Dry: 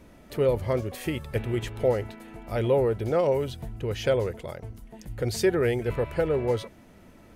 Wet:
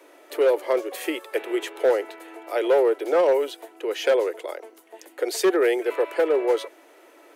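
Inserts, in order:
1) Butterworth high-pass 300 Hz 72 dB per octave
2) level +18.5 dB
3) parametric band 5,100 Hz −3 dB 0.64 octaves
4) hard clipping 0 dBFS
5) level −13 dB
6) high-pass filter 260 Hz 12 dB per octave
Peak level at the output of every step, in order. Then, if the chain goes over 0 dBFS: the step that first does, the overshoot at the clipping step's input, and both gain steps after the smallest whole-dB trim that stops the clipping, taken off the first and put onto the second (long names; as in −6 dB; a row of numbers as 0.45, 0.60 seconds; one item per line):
−12.5, +6.0, +6.0, 0.0, −13.0, −9.0 dBFS
step 2, 6.0 dB
step 2 +12.5 dB, step 5 −7 dB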